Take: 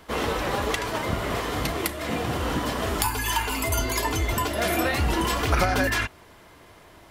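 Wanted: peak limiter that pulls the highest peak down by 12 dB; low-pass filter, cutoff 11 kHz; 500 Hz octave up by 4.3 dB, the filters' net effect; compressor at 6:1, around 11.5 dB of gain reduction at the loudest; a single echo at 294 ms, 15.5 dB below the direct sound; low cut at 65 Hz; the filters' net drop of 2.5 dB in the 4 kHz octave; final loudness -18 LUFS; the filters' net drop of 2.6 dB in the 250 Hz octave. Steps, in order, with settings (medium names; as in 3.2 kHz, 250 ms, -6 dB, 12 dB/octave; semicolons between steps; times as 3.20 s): high-pass 65 Hz; low-pass 11 kHz; peaking EQ 250 Hz -6.5 dB; peaking EQ 500 Hz +7 dB; peaking EQ 4 kHz -3.5 dB; compression 6:1, threshold -29 dBFS; peak limiter -28.5 dBFS; delay 294 ms -15.5 dB; trim +19 dB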